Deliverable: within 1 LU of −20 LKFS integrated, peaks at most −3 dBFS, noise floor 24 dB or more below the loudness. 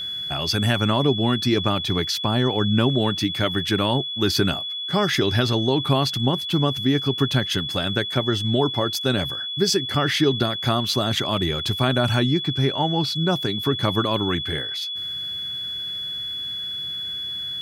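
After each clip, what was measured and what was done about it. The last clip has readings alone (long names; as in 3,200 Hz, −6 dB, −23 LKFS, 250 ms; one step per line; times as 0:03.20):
interfering tone 3,400 Hz; level of the tone −27 dBFS; integrated loudness −22.0 LKFS; sample peak −6.5 dBFS; target loudness −20.0 LKFS
→ notch filter 3,400 Hz, Q 30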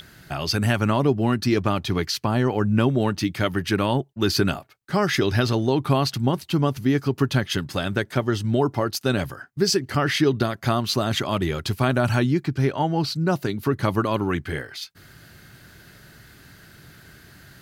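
interfering tone none found; integrated loudness −23.0 LKFS; sample peak −7.0 dBFS; target loudness −20.0 LKFS
→ level +3 dB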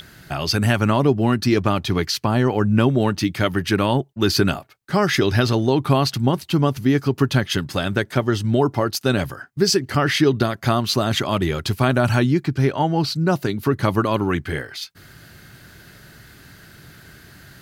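integrated loudness −20.0 LKFS; sample peak −4.0 dBFS; background noise floor −47 dBFS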